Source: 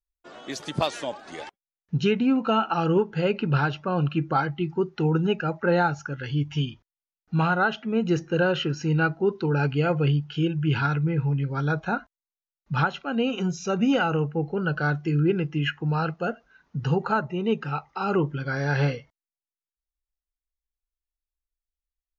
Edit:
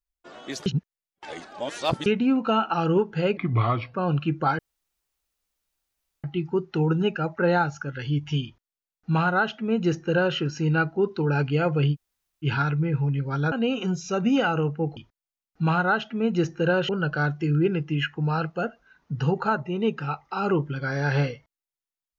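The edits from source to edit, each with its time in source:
0.66–2.06 reverse
3.37–3.83 speed 81%
4.48 insert room tone 1.65 s
6.69–8.61 copy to 14.53
10.18–10.69 room tone, crossfade 0.06 s
11.76–13.08 cut

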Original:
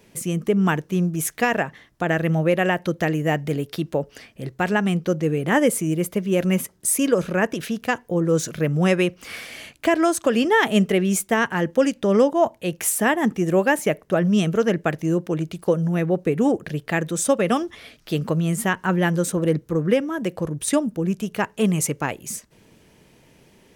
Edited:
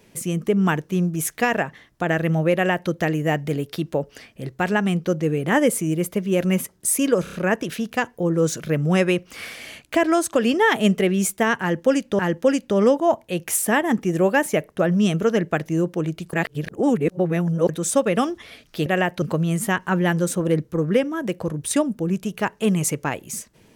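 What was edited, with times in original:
2.54–2.9 copy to 18.19
7.24 stutter 0.03 s, 4 plays
11.52–12.1 loop, 2 plays
15.66–17.02 reverse

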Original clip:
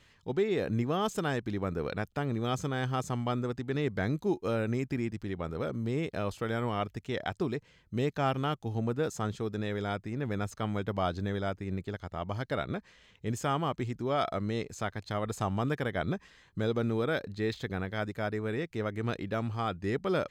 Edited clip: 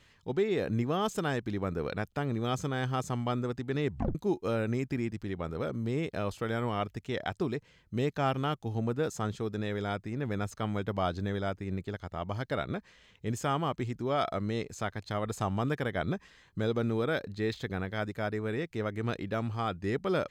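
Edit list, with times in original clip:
3.88 tape stop 0.27 s

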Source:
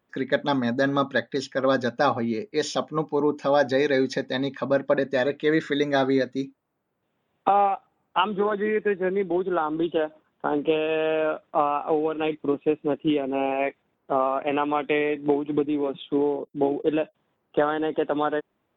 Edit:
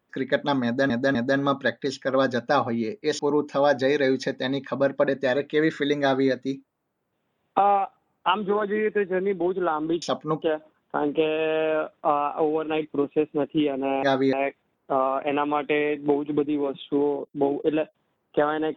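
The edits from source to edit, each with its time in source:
0.65–0.9 loop, 3 plays
2.69–3.09 move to 9.92
5.91–6.21 copy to 13.53

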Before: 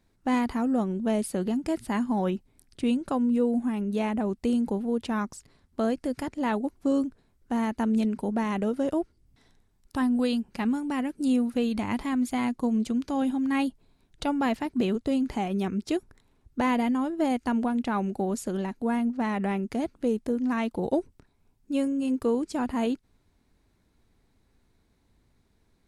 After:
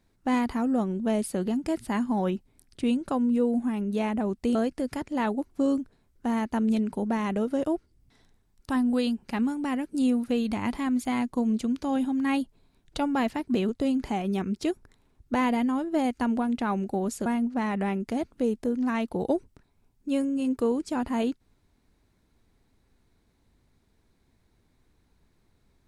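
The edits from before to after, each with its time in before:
4.55–5.81 cut
18.52–18.89 cut

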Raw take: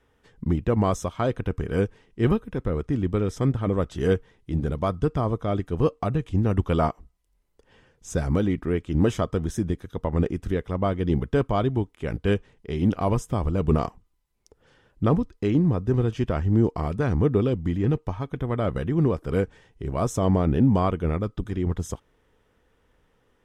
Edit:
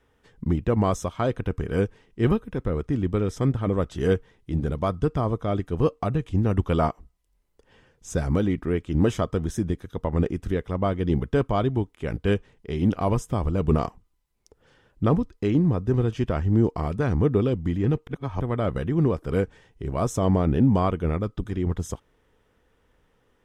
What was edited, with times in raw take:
18.07–18.41 reverse

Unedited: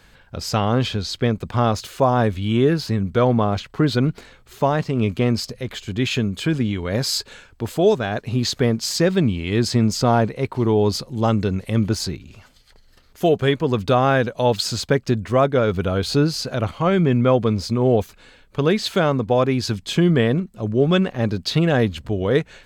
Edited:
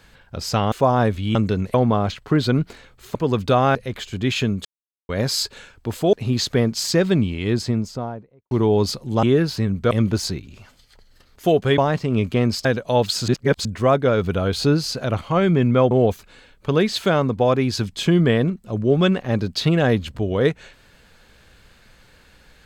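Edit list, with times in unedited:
0.72–1.91 cut
2.54–3.22 swap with 11.29–11.68
4.63–5.5 swap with 13.55–14.15
6.4–6.84 mute
7.88–8.19 cut
9.25–10.57 studio fade out
14.78–15.15 reverse
17.41–17.81 cut

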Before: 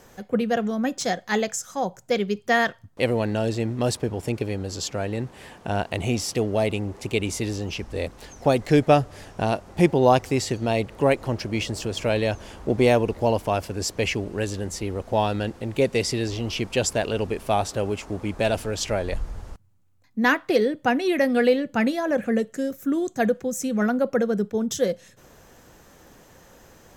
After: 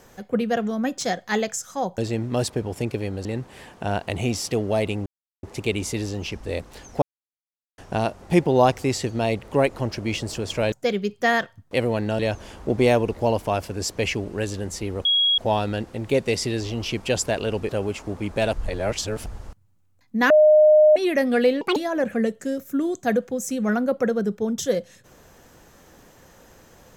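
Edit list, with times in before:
1.98–3.45 move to 12.19
4.72–5.09 cut
6.9 insert silence 0.37 s
8.49–9.25 mute
15.05 add tone 3310 Hz -16 dBFS 0.33 s
17.36–17.72 cut
18.56–19.29 reverse
20.33–20.99 bleep 612 Hz -10 dBFS
21.64–21.89 speed 164%

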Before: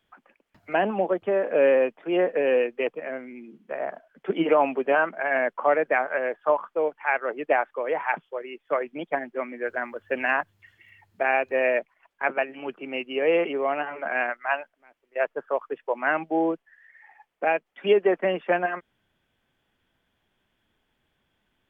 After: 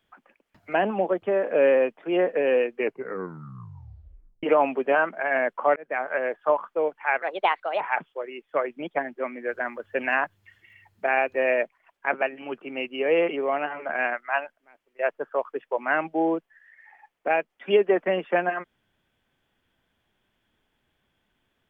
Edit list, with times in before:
2.72 tape stop 1.71 s
5.76–6.13 fade in
7.22–7.97 speed 128%

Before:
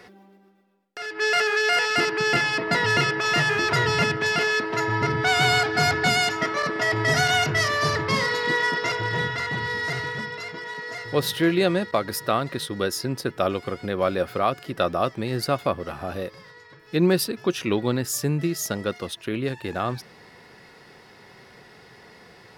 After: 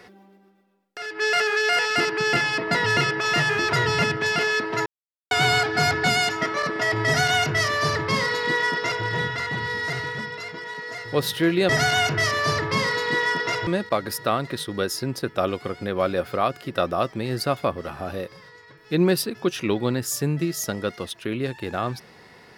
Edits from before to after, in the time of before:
4.86–5.31 mute
7.06–9.04 copy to 11.69

